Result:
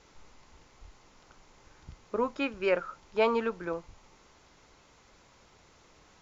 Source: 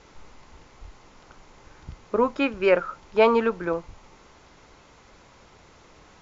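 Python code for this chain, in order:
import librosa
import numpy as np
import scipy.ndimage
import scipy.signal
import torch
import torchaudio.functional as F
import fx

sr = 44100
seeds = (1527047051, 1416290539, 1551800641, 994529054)

y = fx.high_shelf(x, sr, hz=3900.0, db=6.0)
y = y * librosa.db_to_amplitude(-8.0)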